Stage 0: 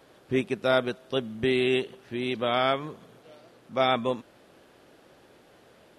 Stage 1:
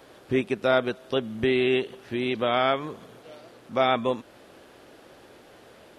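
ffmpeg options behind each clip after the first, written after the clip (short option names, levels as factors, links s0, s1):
-filter_complex "[0:a]acrossover=split=4000[s0][s1];[s1]acompressor=threshold=0.00316:ratio=4:attack=1:release=60[s2];[s0][s2]amix=inputs=2:normalize=0,equalizer=f=160:w=2.2:g=-4,asplit=2[s3][s4];[s4]acompressor=threshold=0.0224:ratio=6,volume=0.891[s5];[s3][s5]amix=inputs=2:normalize=0"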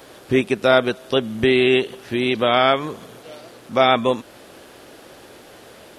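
-af "highshelf=f=4600:g=7,volume=2.11"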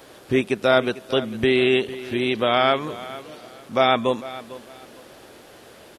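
-af "aecho=1:1:450|900|1350:0.15|0.0389|0.0101,volume=0.75"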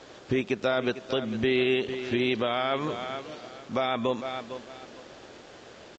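-af "alimiter=limit=0.158:level=0:latency=1:release=118,aresample=16000,aeval=exprs='sgn(val(0))*max(abs(val(0))-0.00106,0)':c=same,aresample=44100"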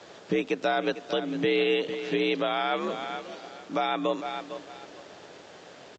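-af "afreqshift=57"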